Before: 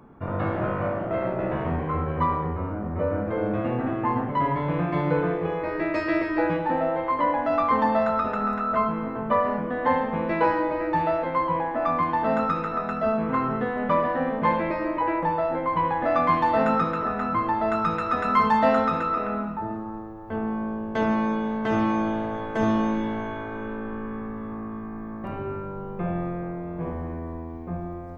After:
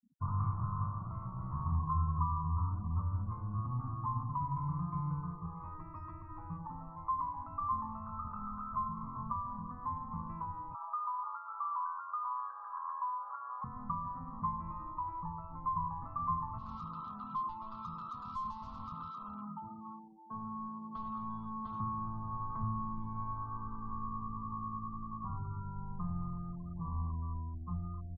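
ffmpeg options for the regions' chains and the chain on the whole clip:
ffmpeg -i in.wav -filter_complex "[0:a]asettb=1/sr,asplit=3[link_01][link_02][link_03];[link_01]atrim=end=10.744[link_04];[link_02]atrim=start=10.74:end=13.64,asetpts=PTS-STARTPTS,afade=type=in:duration=0.004:curve=qsin,afade=type=out:start_time=2.896:duration=0.004:curve=qsin,lowpass=frequency=1100:width=0.5412,lowpass=frequency=1100:width=1.3066,tiltshelf=frequency=780:gain=-7,afreqshift=340[link_05];[link_03]atrim=start=13.636[link_06];[link_04][link_05]acrossfade=duration=0.004:curve1=hsin:curve2=qsin[link_07];[link_07][link_06]acrossfade=duration=0.004:curve1=qsin:curve2=hsin,asettb=1/sr,asplit=3[link_08][link_09][link_10];[link_08]atrim=end=16.584[link_11];[link_09]atrim=start=16.58:end=21.8,asetpts=PTS-STARTPTS,afade=type=in:duration=0.004:curve=qsin,afade=type=out:start_time=5.216:duration=0.004:curve=qsin,highpass=frequency=150:width=0.5412,highpass=frequency=150:width=1.3066,asoftclip=type=hard:threshold=-26dB,highshelf=frequency=2800:width_type=q:width=1.5:gain=10[link_12];[link_10]atrim=start=21.796[link_13];[link_11][link_12]acrossfade=duration=0.004:curve1=hsin:curve2=qsin[link_14];[link_14][link_13]acrossfade=duration=0.004:curve1=qsin:curve2=hsin,afftfilt=real='re*gte(hypot(re,im),0.0251)':imag='im*gte(hypot(re,im),0.0251)':win_size=1024:overlap=0.75,acrossover=split=160[link_15][link_16];[link_16]acompressor=threshold=-33dB:ratio=10[link_17];[link_15][link_17]amix=inputs=2:normalize=0,firequalizer=gain_entry='entry(110,0);entry(370,-25);entry(570,-30);entry(1100,8);entry(1600,-27)':delay=0.05:min_phase=1,volume=-1dB" out.wav

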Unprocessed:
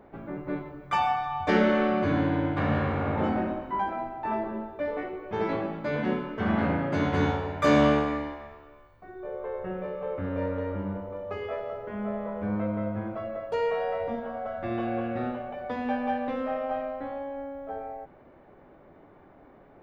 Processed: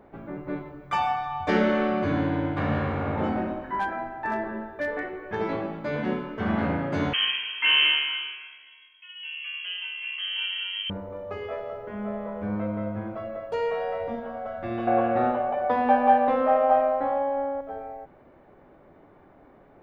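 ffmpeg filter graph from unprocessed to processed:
ffmpeg -i in.wav -filter_complex "[0:a]asettb=1/sr,asplit=3[link_01][link_02][link_03];[link_01]atrim=end=3.634[link_04];[link_02]atrim=start=3.63:end=5.36,asetpts=PTS-STARTPTS,afade=type=in:duration=0.004:curve=qsin,afade=type=out:start_time=1.726:duration=0.004:curve=qsin,equalizer=frequency=1700:width=5.1:gain=14.5,asoftclip=type=hard:threshold=-20.5dB[link_05];[link_03]atrim=start=5.356[link_06];[link_04][link_05]acrossfade=duration=0.004:curve1=hsin:curve2=qsin[link_07];[link_07][link_06]acrossfade=duration=0.004:curve1=qsin:curve2=hsin,asettb=1/sr,asplit=3[link_08][link_09][link_10];[link_08]atrim=end=7.134[link_11];[link_09]atrim=start=7.13:end=10.9,asetpts=PTS-STARTPTS,afade=type=in:duration=0.004:curve=qsin,afade=type=out:start_time=3.766:duration=0.004:curve=qsin,bandreject=frequency=450:width=9.1,lowpass=frequency=2800:width_type=q:width=0.5098,lowpass=frequency=2800:width_type=q:width=0.6013,lowpass=frequency=2800:width_type=q:width=0.9,lowpass=frequency=2800:width_type=q:width=2.563,afreqshift=-3300[link_12];[link_10]atrim=start=10.896[link_13];[link_11][link_12]acrossfade=duration=0.004:curve1=hsin:curve2=qsin[link_14];[link_14][link_13]acrossfade=duration=0.004:curve1=qsin:curve2=hsin,asettb=1/sr,asplit=3[link_15][link_16][link_17];[link_15]atrim=end=14.874[link_18];[link_16]atrim=start=14.87:end=17.61,asetpts=PTS-STARTPTS,afade=type=in:duration=0.004:curve=qsin,afade=type=out:start_time=2.736:duration=0.004:curve=qsin,lowpass=6500,equalizer=frequency=830:width=0.68:gain=12.5[link_19];[link_17]atrim=start=17.606[link_20];[link_18][link_19]acrossfade=duration=0.004:curve1=hsin:curve2=qsin[link_21];[link_21][link_20]acrossfade=duration=0.004:curve1=qsin:curve2=hsin" out.wav

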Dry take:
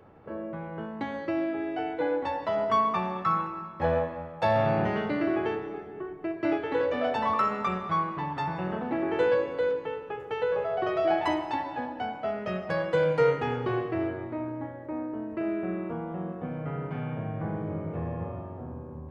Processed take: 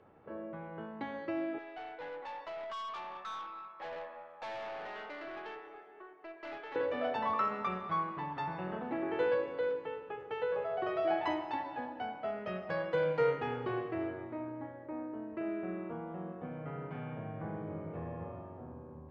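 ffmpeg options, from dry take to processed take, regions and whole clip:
ffmpeg -i in.wav -filter_complex "[0:a]asettb=1/sr,asplit=3[link_01][link_02][link_03];[link_01]atrim=end=1.584[link_04];[link_02]atrim=start=1.58:end=6.76,asetpts=PTS-STARTPTS,afade=type=in:duration=0.004:curve=qsin,afade=type=out:start_time=5.176:duration=0.004:curve=qsin,highpass=650,aeval=exprs='(tanh(44.7*val(0)+0.2)-tanh(0.2))/44.7':channel_layout=same[link_05];[link_03]atrim=start=6.756[link_06];[link_04][link_05]acrossfade=duration=0.004:curve1=hsin:curve2=qsin[link_07];[link_07][link_06]acrossfade=duration=0.004:curve1=qsin:curve2=hsin,lowpass=4400,lowshelf=frequency=160:gain=-6.5,volume=-6dB" out.wav

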